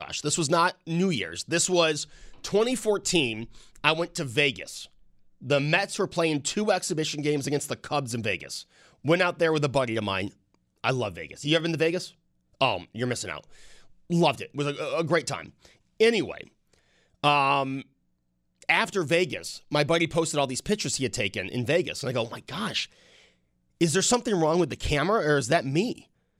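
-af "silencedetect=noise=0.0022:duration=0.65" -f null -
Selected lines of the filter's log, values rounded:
silence_start: 17.87
silence_end: 18.62 | silence_duration: 0.75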